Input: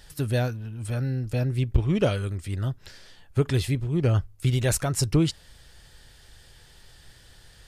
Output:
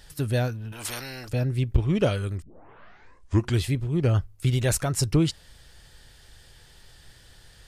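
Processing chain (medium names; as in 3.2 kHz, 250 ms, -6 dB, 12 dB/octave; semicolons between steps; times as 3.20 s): 0.72–1.29 s: spectrum-flattening compressor 4:1; 2.42 s: tape start 1.22 s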